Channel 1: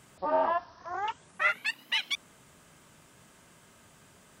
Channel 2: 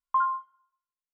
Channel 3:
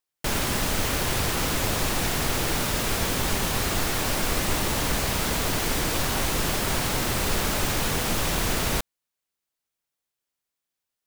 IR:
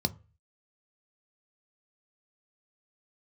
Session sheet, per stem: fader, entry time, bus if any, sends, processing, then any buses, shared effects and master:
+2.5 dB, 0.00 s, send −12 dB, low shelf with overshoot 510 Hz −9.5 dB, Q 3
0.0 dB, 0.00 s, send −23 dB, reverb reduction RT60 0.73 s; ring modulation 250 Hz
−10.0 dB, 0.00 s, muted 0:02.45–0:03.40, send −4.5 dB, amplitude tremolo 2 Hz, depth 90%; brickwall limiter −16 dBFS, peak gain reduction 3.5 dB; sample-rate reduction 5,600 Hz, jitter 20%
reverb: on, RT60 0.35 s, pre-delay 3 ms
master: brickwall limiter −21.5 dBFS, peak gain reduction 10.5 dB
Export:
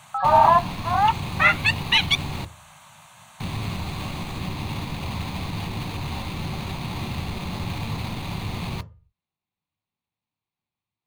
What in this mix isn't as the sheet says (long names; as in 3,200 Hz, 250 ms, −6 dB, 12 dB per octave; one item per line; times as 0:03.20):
stem 1 +2.5 dB → +9.0 dB
stem 3: missing amplitude tremolo 2 Hz, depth 90%
master: missing brickwall limiter −21.5 dBFS, peak gain reduction 10.5 dB